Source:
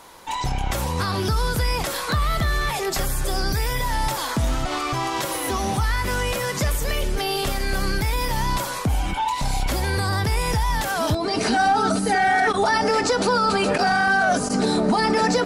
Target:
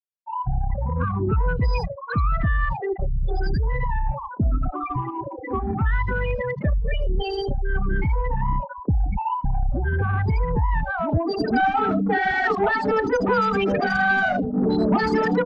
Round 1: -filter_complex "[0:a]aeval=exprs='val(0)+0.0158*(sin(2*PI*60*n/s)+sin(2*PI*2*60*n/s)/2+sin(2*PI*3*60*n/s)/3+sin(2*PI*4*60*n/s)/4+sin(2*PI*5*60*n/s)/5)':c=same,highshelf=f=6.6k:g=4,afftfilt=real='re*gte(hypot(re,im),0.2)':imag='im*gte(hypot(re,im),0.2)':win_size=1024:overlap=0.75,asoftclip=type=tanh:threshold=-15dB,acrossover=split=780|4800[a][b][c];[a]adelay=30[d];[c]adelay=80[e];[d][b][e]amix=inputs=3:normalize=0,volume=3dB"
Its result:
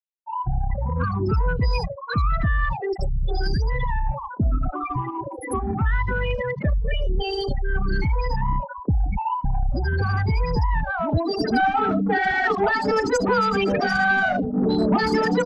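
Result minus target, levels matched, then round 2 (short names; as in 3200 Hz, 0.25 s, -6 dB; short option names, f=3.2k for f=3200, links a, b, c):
8000 Hz band +11.5 dB
-filter_complex "[0:a]aeval=exprs='val(0)+0.0158*(sin(2*PI*60*n/s)+sin(2*PI*2*60*n/s)/2+sin(2*PI*3*60*n/s)/3+sin(2*PI*4*60*n/s)/4+sin(2*PI*5*60*n/s)/5)':c=same,highshelf=f=6.6k:g=-5,afftfilt=real='re*gte(hypot(re,im),0.2)':imag='im*gte(hypot(re,im),0.2)':win_size=1024:overlap=0.75,asoftclip=type=tanh:threshold=-15dB,acrossover=split=780|4800[a][b][c];[a]adelay=30[d];[c]adelay=80[e];[d][b][e]amix=inputs=3:normalize=0,volume=3dB"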